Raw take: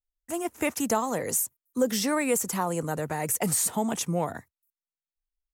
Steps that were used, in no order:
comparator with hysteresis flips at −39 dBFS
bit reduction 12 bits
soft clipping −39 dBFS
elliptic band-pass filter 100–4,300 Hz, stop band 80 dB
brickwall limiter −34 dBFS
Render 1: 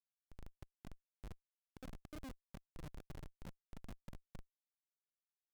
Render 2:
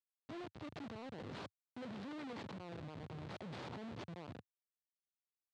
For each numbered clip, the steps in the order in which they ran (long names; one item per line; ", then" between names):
bit reduction, then brickwall limiter, then soft clipping, then elliptic band-pass filter, then comparator with hysteresis
bit reduction, then brickwall limiter, then comparator with hysteresis, then elliptic band-pass filter, then soft clipping